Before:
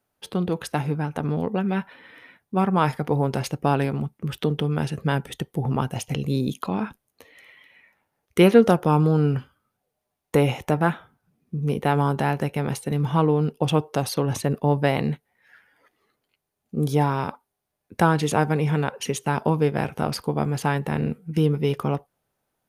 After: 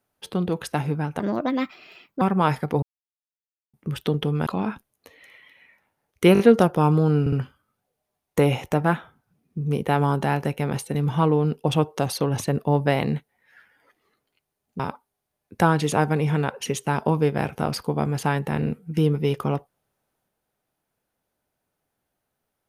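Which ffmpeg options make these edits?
-filter_complex "[0:a]asplit=12[a][b][c][d][e][f][g][h][i][j][k][l];[a]atrim=end=1.204[m];[b]atrim=start=1.2:end=2.58,asetpts=PTS-STARTPTS,asetrate=59976,aresample=44100[n];[c]atrim=start=2.576:end=3.19,asetpts=PTS-STARTPTS,afade=t=out:st=0.61:d=0.004:c=hsin[o];[d]atrim=start=3.19:end=4.1,asetpts=PTS-STARTPTS,volume=0[p];[e]atrim=start=4.1:end=4.832,asetpts=PTS-STARTPTS,afade=t=in:d=0.004:c=hsin[q];[f]atrim=start=6.608:end=8.502[r];[g]atrim=start=8.478:end=8.502[s];[h]atrim=start=8.478:end=8.502[t];[i]atrim=start=8.478:end=9.352[u];[j]atrim=start=9.288:end=9.352[v];[k]atrim=start=9.288:end=16.762[w];[l]atrim=start=17.188[x];[m][n]acrossfade=d=0.004:c1=hsin:c2=hsin[y];[o][p][q]concat=n=3:v=0:a=1[z];[y][z]acrossfade=d=0.004:c1=hsin:c2=hsin[aa];[aa][r]acrossfade=d=0.004:c1=hsin:c2=hsin[ab];[ab][s]acrossfade=d=0.004:c1=hsin:c2=hsin[ac];[ac][t]acrossfade=d=0.004:c1=hsin:c2=hsin[ad];[ad][u]acrossfade=d=0.004:c1=hsin:c2=hsin[ae];[ae][v]acrossfade=d=0.004:c1=hsin:c2=hsin[af];[af][w]acrossfade=d=0.004:c1=hsin:c2=hsin[ag];[ag][x]acrossfade=d=0.004:c1=hsin:c2=hsin"

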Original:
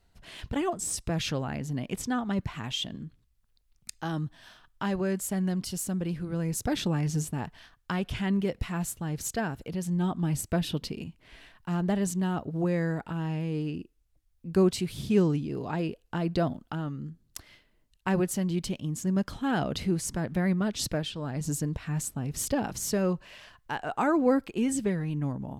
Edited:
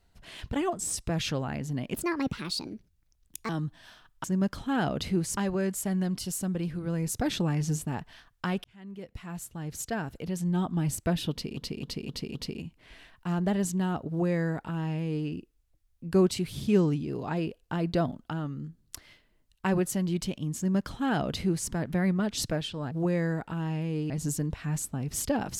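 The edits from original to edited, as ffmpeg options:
-filter_complex "[0:a]asplit=12[a][b][c][d][e][f][g][h][i][j][k][l];[a]atrim=end=1.944[m];[b]atrim=start=1.94:end=4.08,asetpts=PTS-STARTPTS,asetrate=60858,aresample=44100[n];[c]atrim=start=4.076:end=4.832[o];[d]atrim=start=18.988:end=20.122[p];[e]atrim=start=4.828:end=8.1,asetpts=PTS-STARTPTS,afade=t=out:st=3.268:d=0.004:c=hsin[q];[f]atrim=start=8.1:end=11.032,asetpts=PTS-STARTPTS,afade=t=in:d=1.62[r];[g]atrim=start=10.768:end=11.032[s];[h]atrim=start=10.768:end=11.032[t];[i]atrim=start=10.768:end=11.032[u];[j]atrim=start=10.768:end=21.332[v];[k]atrim=start=12.498:end=13.692[w];[l]atrim=start=21.328[x];[m][n]acrossfade=d=0.004:c1=hsin:c2=hsin[y];[y][o]acrossfade=d=0.004:c1=hsin:c2=hsin[z];[z][p]acrossfade=d=0.004:c1=hsin:c2=hsin[aa];[q][r]concat=n=2:v=0:a=1[ab];[aa][ab]acrossfade=d=0.004:c1=hsin:c2=hsin[ac];[ac][s]acrossfade=d=0.004:c1=hsin:c2=hsin[ad];[ad][t]acrossfade=d=0.004:c1=hsin:c2=hsin[ae];[ae][u]acrossfade=d=0.004:c1=hsin:c2=hsin[af];[af][v]acrossfade=d=0.004:c1=hsin:c2=hsin[ag];[ag][w]acrossfade=d=0.004:c1=hsin:c2=hsin[ah];[ah][x]acrossfade=d=0.004:c1=hsin:c2=hsin"

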